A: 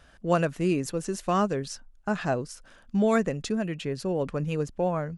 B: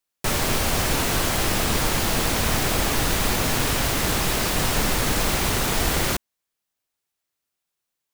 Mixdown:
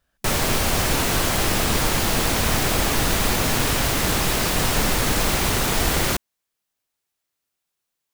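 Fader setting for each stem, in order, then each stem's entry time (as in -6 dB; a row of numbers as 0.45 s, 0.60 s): -17.0 dB, +1.5 dB; 0.00 s, 0.00 s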